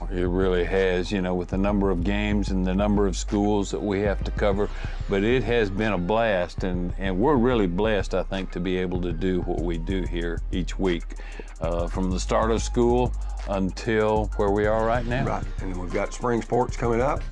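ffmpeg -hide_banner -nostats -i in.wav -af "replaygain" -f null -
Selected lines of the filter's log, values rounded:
track_gain = +5.8 dB
track_peak = 0.225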